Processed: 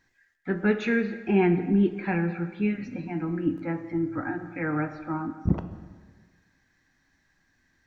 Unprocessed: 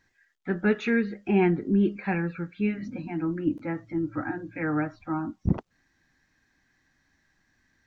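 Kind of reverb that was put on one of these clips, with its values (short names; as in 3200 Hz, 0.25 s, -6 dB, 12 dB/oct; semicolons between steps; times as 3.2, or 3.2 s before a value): plate-style reverb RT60 1.5 s, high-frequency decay 0.75×, DRR 8.5 dB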